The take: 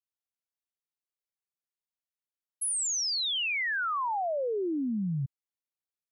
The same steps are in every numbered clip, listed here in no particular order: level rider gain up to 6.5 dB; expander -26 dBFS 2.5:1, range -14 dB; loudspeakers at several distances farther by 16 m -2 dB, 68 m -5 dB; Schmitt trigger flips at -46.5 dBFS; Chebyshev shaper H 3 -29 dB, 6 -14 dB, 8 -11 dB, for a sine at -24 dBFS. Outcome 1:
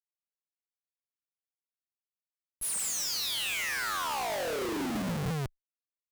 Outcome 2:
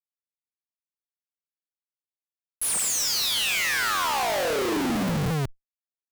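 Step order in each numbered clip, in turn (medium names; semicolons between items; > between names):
loudspeakers at several distances > Schmitt trigger > expander > level rider > Chebyshev shaper; loudspeakers at several distances > expander > level rider > Schmitt trigger > Chebyshev shaper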